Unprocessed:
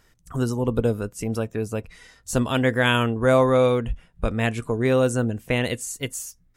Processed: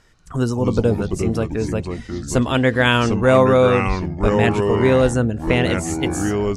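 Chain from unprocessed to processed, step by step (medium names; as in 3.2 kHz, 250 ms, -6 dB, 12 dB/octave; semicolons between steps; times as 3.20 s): low-pass 8.3 kHz 12 dB/octave; ever faster or slower copies 138 ms, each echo -4 st, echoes 3, each echo -6 dB; trim +4 dB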